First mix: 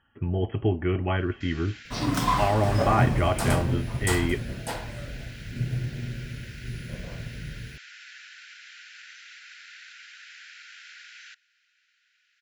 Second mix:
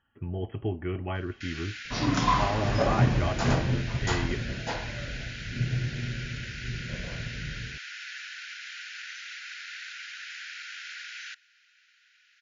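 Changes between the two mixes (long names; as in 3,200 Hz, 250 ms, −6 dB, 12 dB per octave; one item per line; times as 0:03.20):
speech −6.5 dB
first sound +6.0 dB
master: add linear-phase brick-wall low-pass 7,200 Hz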